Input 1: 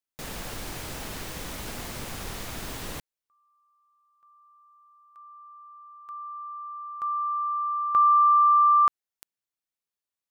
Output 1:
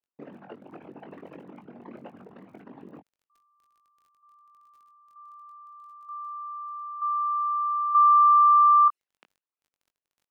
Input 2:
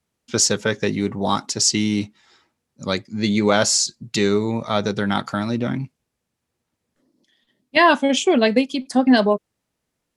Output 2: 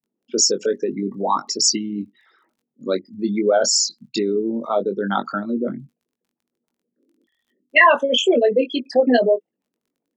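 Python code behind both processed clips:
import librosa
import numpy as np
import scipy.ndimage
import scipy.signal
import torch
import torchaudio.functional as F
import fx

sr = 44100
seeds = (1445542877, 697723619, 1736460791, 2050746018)

y = fx.envelope_sharpen(x, sr, power=3.0)
y = scipy.signal.sosfilt(scipy.signal.butter(4, 210.0, 'highpass', fs=sr, output='sos'), y)
y = fx.env_lowpass(y, sr, base_hz=1400.0, full_db=-19.5)
y = fx.peak_eq(y, sr, hz=2700.0, db=7.0, octaves=0.46)
y = fx.dmg_crackle(y, sr, seeds[0], per_s=14.0, level_db=-53.0)
y = fx.doubler(y, sr, ms=21.0, db=-7)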